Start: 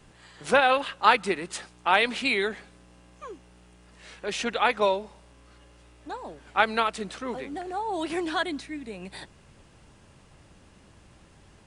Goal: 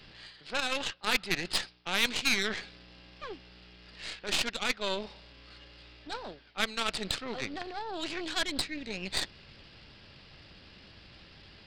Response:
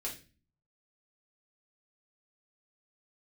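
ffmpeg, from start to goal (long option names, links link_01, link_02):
-af "equalizer=frequency=1000:width_type=o:width=0.74:gain=-5,areverse,acompressor=threshold=-37dB:ratio=5,areverse,crystalizer=i=7:c=0,aresample=11025,aresample=44100,aeval=exprs='0.178*(cos(1*acos(clip(val(0)/0.178,-1,1)))-cos(1*PI/2))+0.0282*(cos(6*acos(clip(val(0)/0.178,-1,1)))-cos(6*PI/2))+0.01*(cos(7*acos(clip(val(0)/0.178,-1,1)))-cos(7*PI/2))':channel_layout=same,volume=3dB"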